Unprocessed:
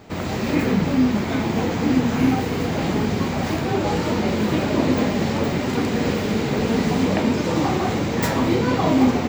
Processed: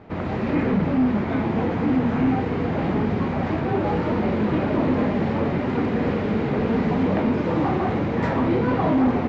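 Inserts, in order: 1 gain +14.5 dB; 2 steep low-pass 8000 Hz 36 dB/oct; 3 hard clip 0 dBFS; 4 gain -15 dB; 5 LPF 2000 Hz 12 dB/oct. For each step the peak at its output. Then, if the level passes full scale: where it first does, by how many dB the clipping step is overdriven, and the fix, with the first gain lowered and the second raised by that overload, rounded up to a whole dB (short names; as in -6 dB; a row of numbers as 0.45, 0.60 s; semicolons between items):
+8.0, +8.0, 0.0, -15.0, -14.5 dBFS; step 1, 8.0 dB; step 1 +6.5 dB, step 4 -7 dB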